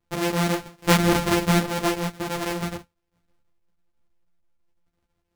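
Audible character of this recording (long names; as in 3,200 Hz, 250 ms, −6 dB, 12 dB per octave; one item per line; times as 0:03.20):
a buzz of ramps at a fixed pitch in blocks of 256 samples
chopped level 6.1 Hz, depth 60%, duty 85%
a shimmering, thickened sound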